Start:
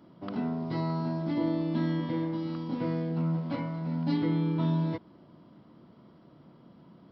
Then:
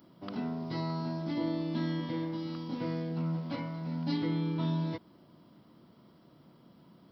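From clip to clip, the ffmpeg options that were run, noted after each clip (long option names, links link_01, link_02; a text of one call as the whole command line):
ffmpeg -i in.wav -af "aemphasis=mode=production:type=75kf,volume=-4dB" out.wav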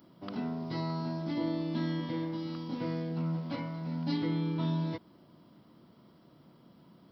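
ffmpeg -i in.wav -af anull out.wav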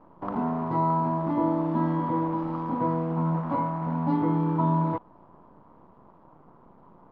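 ffmpeg -i in.wav -af "acrusher=bits=8:dc=4:mix=0:aa=0.000001,lowpass=frequency=1000:width_type=q:width=4,volume=6dB" out.wav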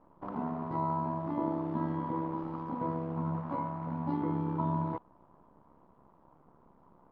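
ffmpeg -i in.wav -af "tremolo=f=69:d=0.519,volume=-5.5dB" out.wav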